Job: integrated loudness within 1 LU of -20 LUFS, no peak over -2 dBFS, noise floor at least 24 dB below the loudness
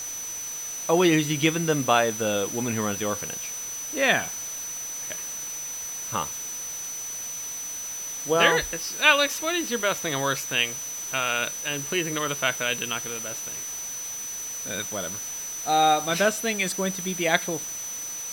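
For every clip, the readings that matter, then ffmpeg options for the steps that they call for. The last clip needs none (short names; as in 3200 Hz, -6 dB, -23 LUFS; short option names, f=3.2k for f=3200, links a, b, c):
steady tone 6000 Hz; tone level -32 dBFS; noise floor -34 dBFS; noise floor target -50 dBFS; loudness -25.5 LUFS; peak -3.0 dBFS; loudness target -20.0 LUFS
-> -af "bandreject=f=6k:w=30"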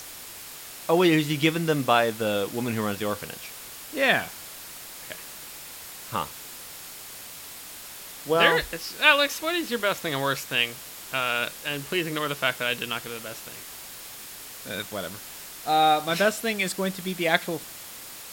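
steady tone none; noise floor -42 dBFS; noise floor target -49 dBFS
-> -af "afftdn=nr=7:nf=-42"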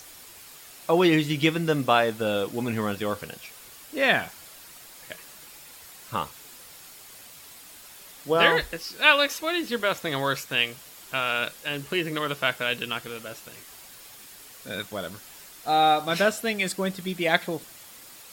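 noise floor -47 dBFS; noise floor target -49 dBFS
-> -af "afftdn=nr=6:nf=-47"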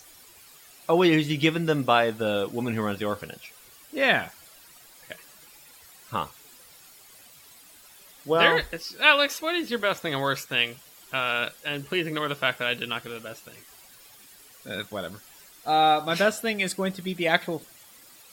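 noise floor -52 dBFS; loudness -25.0 LUFS; peak -3.0 dBFS; loudness target -20.0 LUFS
-> -af "volume=5dB,alimiter=limit=-2dB:level=0:latency=1"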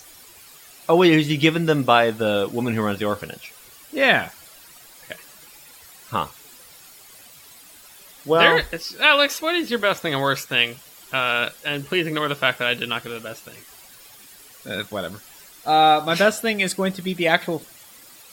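loudness -20.0 LUFS; peak -2.0 dBFS; noise floor -47 dBFS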